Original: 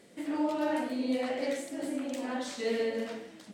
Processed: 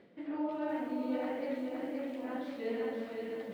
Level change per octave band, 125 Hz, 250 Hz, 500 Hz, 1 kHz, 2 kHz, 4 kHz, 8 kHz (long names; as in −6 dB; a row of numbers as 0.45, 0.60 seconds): can't be measured, −3.5 dB, −4.0 dB, −4.5 dB, −6.5 dB, −11.5 dB, below −20 dB